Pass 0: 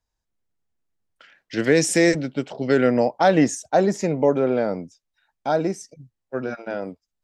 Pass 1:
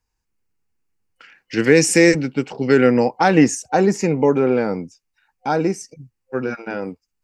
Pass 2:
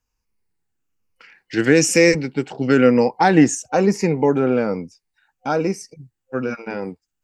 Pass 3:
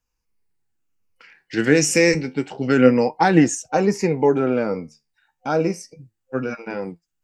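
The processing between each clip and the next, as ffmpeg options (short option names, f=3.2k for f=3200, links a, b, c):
-af "superequalizer=8b=0.355:12b=1.41:13b=0.501,volume=4.5dB"
-af "afftfilt=real='re*pow(10,6/40*sin(2*PI*(0.87*log(max(b,1)*sr/1024/100)/log(2)-(-1.1)*(pts-256)/sr)))':imag='im*pow(10,6/40*sin(2*PI*(0.87*log(max(b,1)*sr/1024/100)/log(2)-(-1.1)*(pts-256)/sr)))':win_size=1024:overlap=0.75,volume=-1dB"
-af "flanger=delay=5.8:depth=7.8:regen=70:speed=0.29:shape=sinusoidal,volume=3dB"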